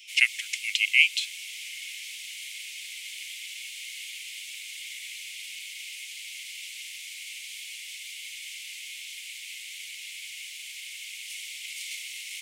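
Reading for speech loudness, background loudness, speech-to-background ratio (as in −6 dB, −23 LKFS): −23.0 LKFS, −37.0 LKFS, 14.0 dB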